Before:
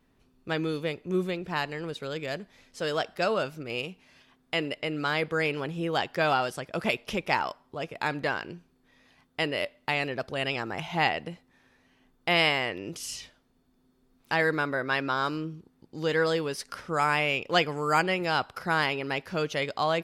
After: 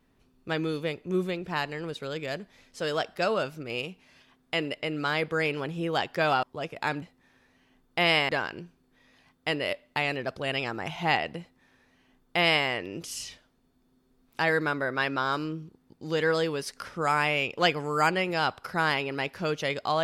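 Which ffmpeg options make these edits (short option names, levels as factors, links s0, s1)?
-filter_complex "[0:a]asplit=4[s0][s1][s2][s3];[s0]atrim=end=6.432[s4];[s1]atrim=start=7.618:end=8.212[s5];[s2]atrim=start=11.318:end=12.592[s6];[s3]atrim=start=8.208[s7];[s4][s5]acrossfade=d=0.004:c1=hsin:c2=hsin[s8];[s8][s6]acrossfade=d=0.004:c1=hsin:c2=hsin[s9];[s9][s7]acrossfade=d=0.004:c1=hsin:c2=hsin"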